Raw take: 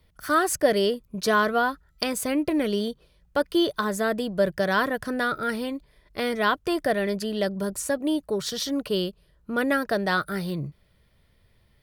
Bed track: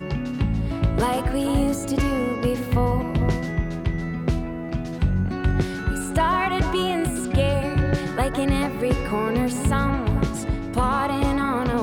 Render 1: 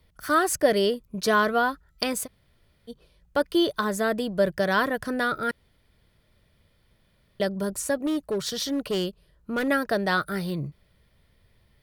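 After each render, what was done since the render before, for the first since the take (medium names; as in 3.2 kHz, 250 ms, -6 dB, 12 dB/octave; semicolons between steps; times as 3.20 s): 2.25–2.90 s: room tone, crossfade 0.06 s; 5.51–7.40 s: room tone; 8.06–9.68 s: hard clipper -22 dBFS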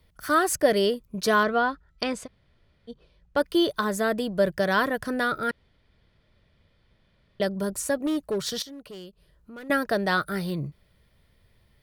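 1.43–3.37 s: distance through air 92 m; 5.50–7.42 s: low-pass 5.1 kHz; 8.62–9.70 s: compression 2:1, threshold -52 dBFS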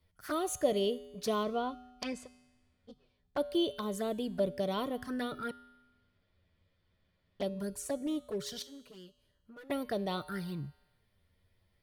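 touch-sensitive flanger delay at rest 11.5 ms, full sweep at -22.5 dBFS; feedback comb 83 Hz, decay 1.2 s, harmonics odd, mix 60%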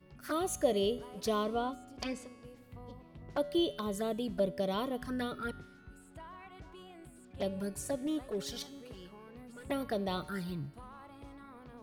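add bed track -29.5 dB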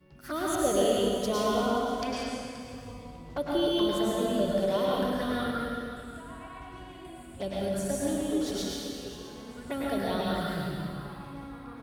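delay 527 ms -15.5 dB; plate-style reverb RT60 2 s, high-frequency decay 0.95×, pre-delay 90 ms, DRR -5.5 dB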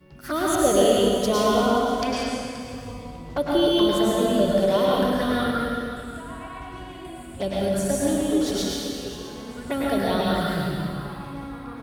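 trim +7 dB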